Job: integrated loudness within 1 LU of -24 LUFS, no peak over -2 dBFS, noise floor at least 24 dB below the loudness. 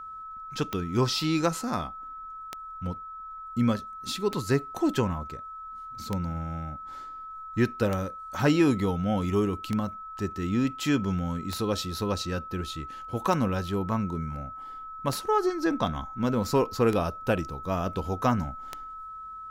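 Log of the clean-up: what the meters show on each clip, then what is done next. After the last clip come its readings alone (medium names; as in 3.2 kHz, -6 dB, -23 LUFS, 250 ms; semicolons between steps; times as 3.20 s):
clicks found 11; steady tone 1.3 kHz; tone level -38 dBFS; loudness -28.5 LUFS; peak level -10.0 dBFS; loudness target -24.0 LUFS
-> de-click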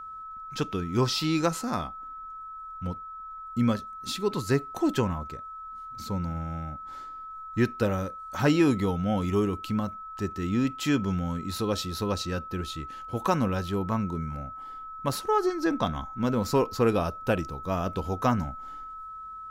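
clicks found 0; steady tone 1.3 kHz; tone level -38 dBFS
-> band-stop 1.3 kHz, Q 30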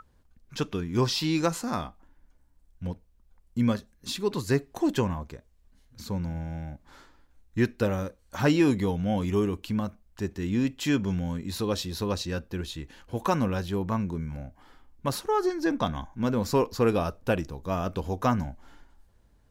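steady tone not found; loudness -29.0 LUFS; peak level -10.0 dBFS; loudness target -24.0 LUFS
-> trim +5 dB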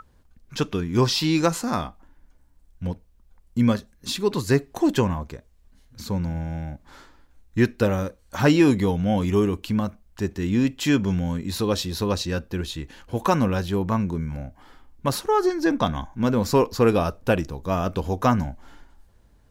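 loudness -24.0 LUFS; peak level -5.0 dBFS; noise floor -57 dBFS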